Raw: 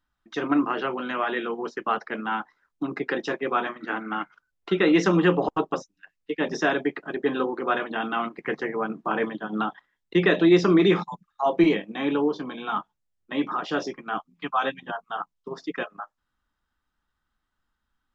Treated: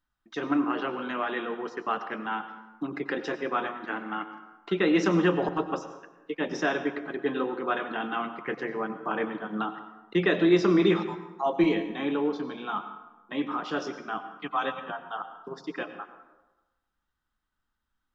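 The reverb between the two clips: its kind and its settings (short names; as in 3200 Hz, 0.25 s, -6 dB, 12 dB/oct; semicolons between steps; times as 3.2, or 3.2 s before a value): plate-style reverb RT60 1.1 s, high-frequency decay 0.6×, pre-delay 80 ms, DRR 10 dB; gain -4 dB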